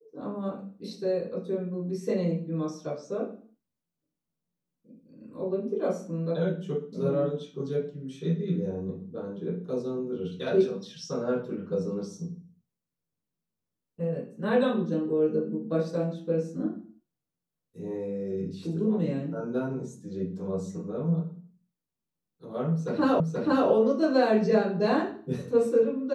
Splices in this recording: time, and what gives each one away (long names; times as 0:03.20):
0:23.20: the same again, the last 0.48 s